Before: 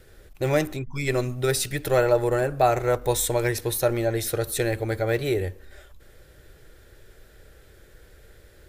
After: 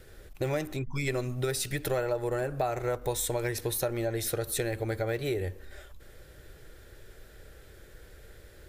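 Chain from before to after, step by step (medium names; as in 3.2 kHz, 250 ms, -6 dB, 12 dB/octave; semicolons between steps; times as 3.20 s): compression 4:1, threshold -28 dBFS, peak gain reduction 12 dB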